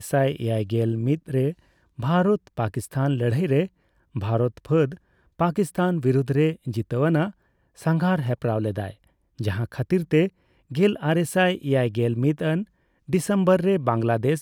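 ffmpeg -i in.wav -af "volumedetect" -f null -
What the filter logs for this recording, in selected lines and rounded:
mean_volume: -23.3 dB
max_volume: -6.6 dB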